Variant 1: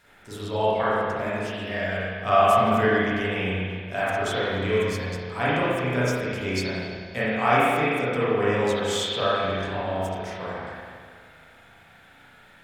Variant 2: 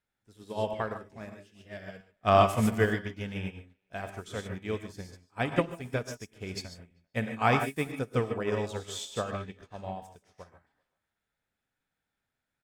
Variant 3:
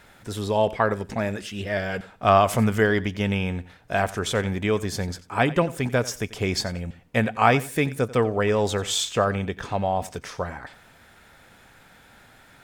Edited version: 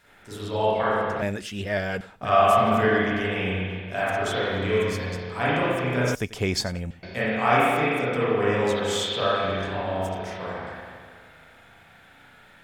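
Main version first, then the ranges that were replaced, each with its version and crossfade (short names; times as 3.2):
1
1.22–2.25 from 3
6.15–7.03 from 3
not used: 2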